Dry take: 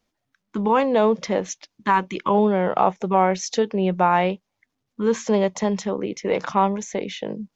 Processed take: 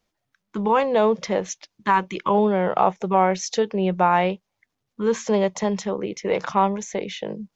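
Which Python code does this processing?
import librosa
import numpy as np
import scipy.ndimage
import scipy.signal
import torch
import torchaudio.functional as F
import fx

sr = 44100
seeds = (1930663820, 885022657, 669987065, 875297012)

y = fx.peak_eq(x, sr, hz=260.0, db=-7.5, octaves=0.32)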